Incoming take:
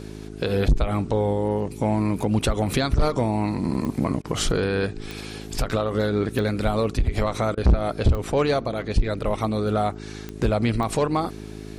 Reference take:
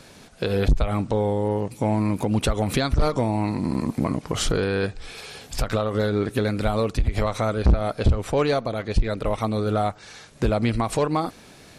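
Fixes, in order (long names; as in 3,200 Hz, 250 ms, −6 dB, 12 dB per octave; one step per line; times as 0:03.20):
click removal
hum removal 52.8 Hz, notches 8
repair the gap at 0:04.22/0:07.55, 23 ms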